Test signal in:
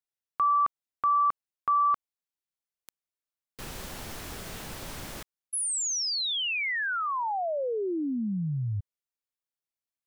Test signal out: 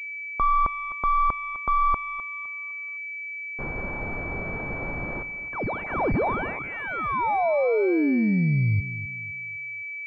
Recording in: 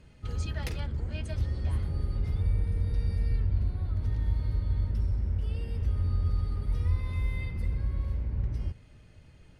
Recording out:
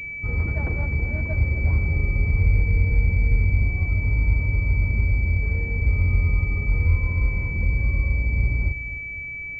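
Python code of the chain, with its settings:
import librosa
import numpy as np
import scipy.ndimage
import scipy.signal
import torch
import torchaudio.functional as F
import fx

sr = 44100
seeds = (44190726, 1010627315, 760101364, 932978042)

p1 = x + fx.echo_feedback(x, sr, ms=256, feedback_pct=38, wet_db=-13.5, dry=0)
p2 = fx.pwm(p1, sr, carrier_hz=2300.0)
y = p2 * 10.0 ** (8.0 / 20.0)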